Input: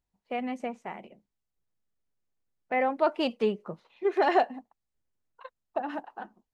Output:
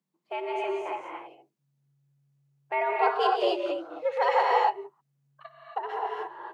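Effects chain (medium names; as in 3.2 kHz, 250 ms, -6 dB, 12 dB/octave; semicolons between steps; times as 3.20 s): frequency shift +140 Hz; gated-style reverb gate 300 ms rising, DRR -2 dB; trim -1.5 dB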